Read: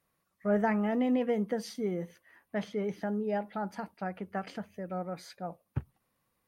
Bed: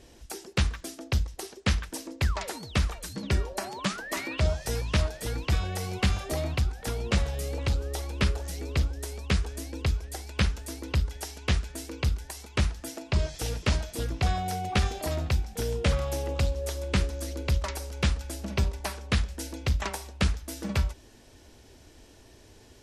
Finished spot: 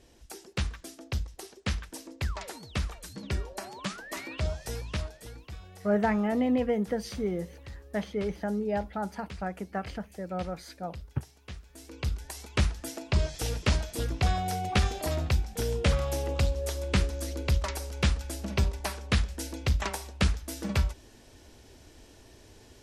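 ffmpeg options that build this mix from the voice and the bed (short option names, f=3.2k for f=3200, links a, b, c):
-filter_complex "[0:a]adelay=5400,volume=2dB[a];[1:a]volume=12dB,afade=t=out:st=4.7:d=0.79:silence=0.251189,afade=t=in:st=11.65:d=0.77:silence=0.133352[b];[a][b]amix=inputs=2:normalize=0"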